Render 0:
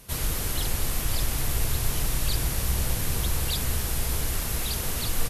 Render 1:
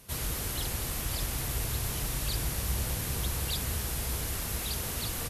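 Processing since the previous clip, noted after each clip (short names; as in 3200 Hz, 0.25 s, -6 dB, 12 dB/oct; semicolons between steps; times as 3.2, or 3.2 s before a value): HPF 41 Hz; gain -4 dB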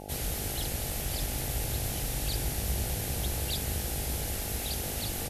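bell 1100 Hz -7.5 dB 0.67 oct; buzz 50 Hz, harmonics 17, -44 dBFS 0 dB/oct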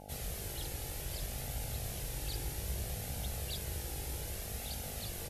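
flange 0.63 Hz, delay 1.3 ms, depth 1.1 ms, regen -48%; gain -4 dB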